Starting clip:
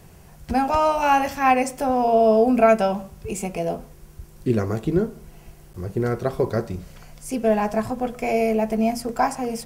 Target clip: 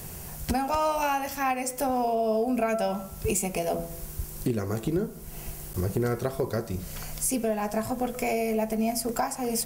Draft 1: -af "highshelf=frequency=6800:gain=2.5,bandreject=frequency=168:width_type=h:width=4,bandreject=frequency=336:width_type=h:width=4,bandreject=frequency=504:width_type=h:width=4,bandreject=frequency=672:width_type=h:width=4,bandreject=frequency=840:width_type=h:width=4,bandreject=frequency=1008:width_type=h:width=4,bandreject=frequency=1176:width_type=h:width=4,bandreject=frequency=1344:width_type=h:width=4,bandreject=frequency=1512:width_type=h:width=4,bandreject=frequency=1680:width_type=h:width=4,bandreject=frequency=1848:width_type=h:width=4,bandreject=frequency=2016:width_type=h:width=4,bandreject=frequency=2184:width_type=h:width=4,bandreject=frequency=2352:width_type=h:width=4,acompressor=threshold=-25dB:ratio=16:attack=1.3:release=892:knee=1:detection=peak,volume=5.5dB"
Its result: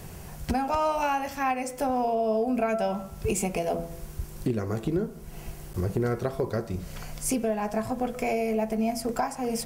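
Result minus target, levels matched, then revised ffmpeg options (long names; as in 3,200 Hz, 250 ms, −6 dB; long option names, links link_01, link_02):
8,000 Hz band −4.5 dB
-af "highshelf=frequency=6800:gain=14.5,bandreject=frequency=168:width_type=h:width=4,bandreject=frequency=336:width_type=h:width=4,bandreject=frequency=504:width_type=h:width=4,bandreject=frequency=672:width_type=h:width=4,bandreject=frequency=840:width_type=h:width=4,bandreject=frequency=1008:width_type=h:width=4,bandreject=frequency=1176:width_type=h:width=4,bandreject=frequency=1344:width_type=h:width=4,bandreject=frequency=1512:width_type=h:width=4,bandreject=frequency=1680:width_type=h:width=4,bandreject=frequency=1848:width_type=h:width=4,bandreject=frequency=2016:width_type=h:width=4,bandreject=frequency=2184:width_type=h:width=4,bandreject=frequency=2352:width_type=h:width=4,acompressor=threshold=-25dB:ratio=16:attack=1.3:release=892:knee=1:detection=peak,volume=5.5dB"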